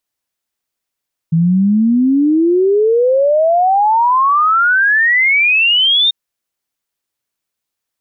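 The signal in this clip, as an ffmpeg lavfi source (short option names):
-f lavfi -i "aevalsrc='0.376*clip(min(t,4.79-t)/0.01,0,1)*sin(2*PI*160*4.79/log(3700/160)*(exp(log(3700/160)*t/4.79)-1))':d=4.79:s=44100"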